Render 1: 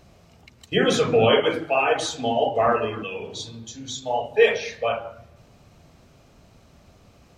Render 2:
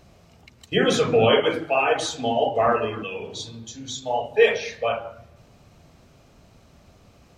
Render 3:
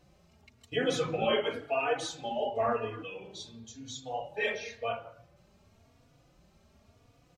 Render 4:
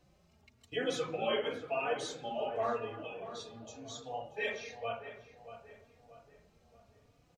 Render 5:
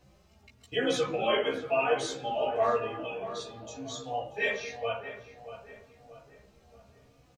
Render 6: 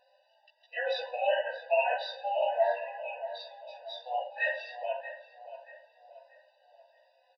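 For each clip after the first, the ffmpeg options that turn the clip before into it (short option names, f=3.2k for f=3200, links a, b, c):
-af anull
-filter_complex "[0:a]asplit=2[a][b];[b]adelay=3.5,afreqshift=0.95[c];[a][c]amix=inputs=2:normalize=1,volume=-7dB"
-filter_complex "[0:a]acrossover=split=210[a][b];[a]alimiter=level_in=20dB:limit=-24dB:level=0:latency=1,volume=-20dB[c];[c][b]amix=inputs=2:normalize=0,asplit=2[d][e];[e]adelay=632,lowpass=f=2k:p=1,volume=-11.5dB,asplit=2[f][g];[g]adelay=632,lowpass=f=2k:p=1,volume=0.47,asplit=2[h][i];[i]adelay=632,lowpass=f=2k:p=1,volume=0.47,asplit=2[j][k];[k]adelay=632,lowpass=f=2k:p=1,volume=0.47,asplit=2[l][m];[m]adelay=632,lowpass=f=2k:p=1,volume=0.47[n];[d][f][h][j][l][n]amix=inputs=6:normalize=0,volume=-4.5dB"
-filter_complex "[0:a]asplit=2[a][b];[b]adelay=15,volume=-3dB[c];[a][c]amix=inputs=2:normalize=0,volume=4.5dB"
-af "aresample=11025,aresample=44100,afftfilt=real='re*eq(mod(floor(b*sr/1024/500),2),1)':imag='im*eq(mod(floor(b*sr/1024/500),2),1)':win_size=1024:overlap=0.75,volume=1.5dB"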